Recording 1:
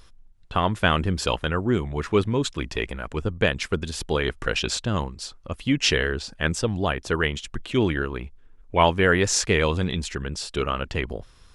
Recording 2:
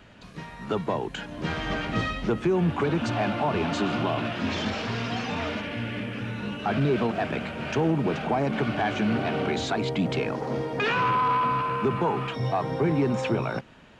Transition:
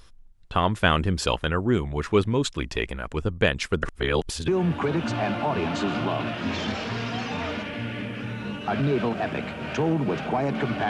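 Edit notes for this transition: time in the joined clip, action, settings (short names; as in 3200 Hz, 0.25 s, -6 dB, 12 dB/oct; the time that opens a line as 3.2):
recording 1
3.83–4.48 reverse
4.48 switch to recording 2 from 2.46 s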